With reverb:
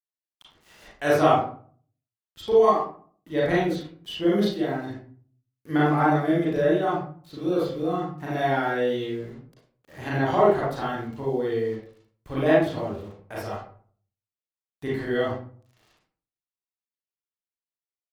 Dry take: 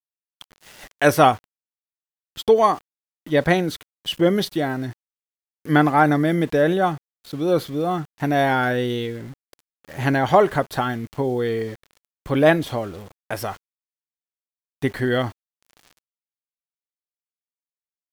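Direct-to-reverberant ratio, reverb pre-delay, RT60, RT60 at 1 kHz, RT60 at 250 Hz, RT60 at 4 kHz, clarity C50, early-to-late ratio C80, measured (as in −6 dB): −7.0 dB, 33 ms, 0.50 s, 0.45 s, 0.60 s, 0.30 s, −0.5 dB, 6.5 dB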